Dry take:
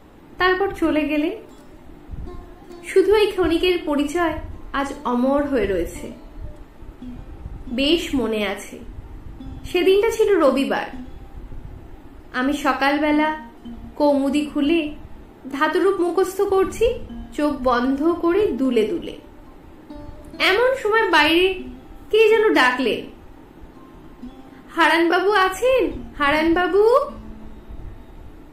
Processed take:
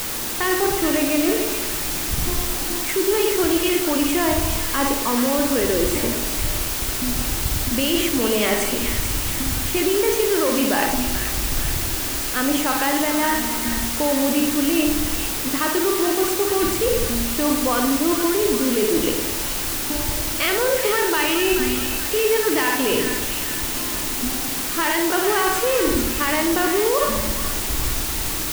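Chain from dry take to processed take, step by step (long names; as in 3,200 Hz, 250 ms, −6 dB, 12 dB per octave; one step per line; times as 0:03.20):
brickwall limiter −12.5 dBFS, peak gain reduction 8.5 dB
reversed playback
downward compressor 12 to 1, threshold −27 dBFS, peak gain reduction 12 dB
reversed playback
bit-depth reduction 6 bits, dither triangular
echo with a time of its own for lows and highs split 1,200 Hz, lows 111 ms, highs 429 ms, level −7 dB
level +9 dB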